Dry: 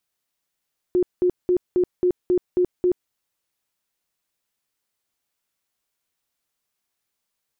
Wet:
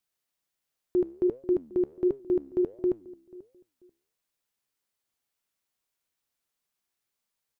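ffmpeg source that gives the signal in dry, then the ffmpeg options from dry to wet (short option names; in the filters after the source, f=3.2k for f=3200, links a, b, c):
-f lavfi -i "aevalsrc='0.178*sin(2*PI*360*mod(t,0.27))*lt(mod(t,0.27),28/360)':d=2.16:s=44100"
-filter_complex "[0:a]asplit=2[a][b];[b]adelay=488,lowpass=f=1k:p=1,volume=-20dB,asplit=2[c][d];[d]adelay=488,lowpass=f=1k:p=1,volume=0.24[e];[a][c][e]amix=inputs=3:normalize=0,flanger=delay=7.3:depth=7.7:regen=86:speed=1.4:shape=sinusoidal"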